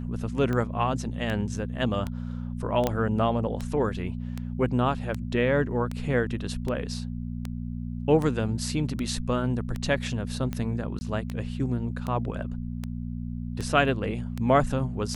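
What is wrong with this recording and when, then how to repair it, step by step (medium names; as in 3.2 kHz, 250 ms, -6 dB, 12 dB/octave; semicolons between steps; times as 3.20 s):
hum 60 Hz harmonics 4 -33 dBFS
tick 78 rpm -18 dBFS
2.87 s: pop -11 dBFS
10.99–11.01 s: dropout 20 ms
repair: de-click; de-hum 60 Hz, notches 4; interpolate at 10.99 s, 20 ms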